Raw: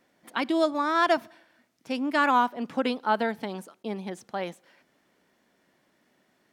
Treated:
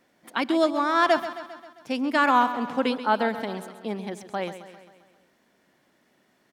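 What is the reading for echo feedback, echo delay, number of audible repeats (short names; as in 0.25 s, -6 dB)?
57%, 0.133 s, 5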